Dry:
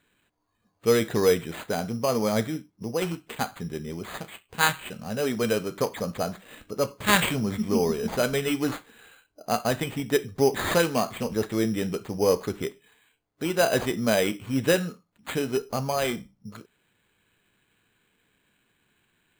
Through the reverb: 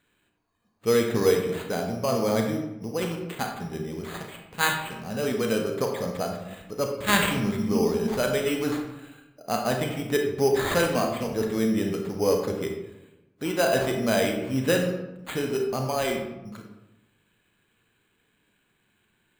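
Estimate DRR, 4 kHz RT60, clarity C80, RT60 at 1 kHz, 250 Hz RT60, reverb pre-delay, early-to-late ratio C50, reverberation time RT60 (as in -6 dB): 3.0 dB, 0.55 s, 7.5 dB, 0.95 s, 1.2 s, 31 ms, 5.0 dB, 1.0 s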